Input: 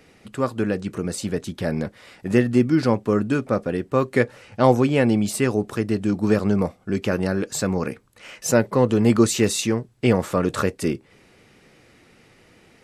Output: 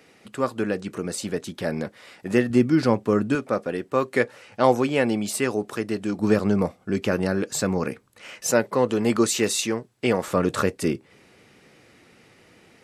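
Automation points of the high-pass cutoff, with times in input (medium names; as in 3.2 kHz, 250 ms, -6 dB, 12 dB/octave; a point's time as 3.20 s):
high-pass 6 dB/octave
250 Hz
from 2.50 s 110 Hz
from 3.35 s 360 Hz
from 6.19 s 110 Hz
from 8.47 s 370 Hz
from 10.28 s 96 Hz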